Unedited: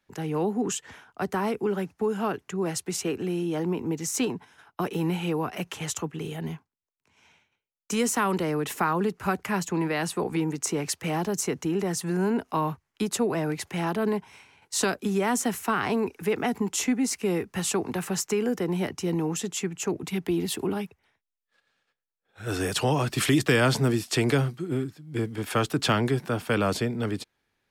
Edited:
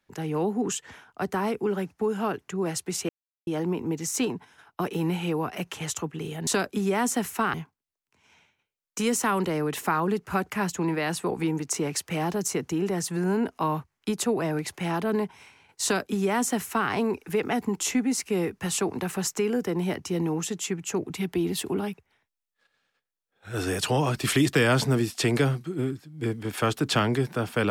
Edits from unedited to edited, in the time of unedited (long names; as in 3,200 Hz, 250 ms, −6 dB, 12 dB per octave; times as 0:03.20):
0:03.09–0:03.47: silence
0:14.76–0:15.83: duplicate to 0:06.47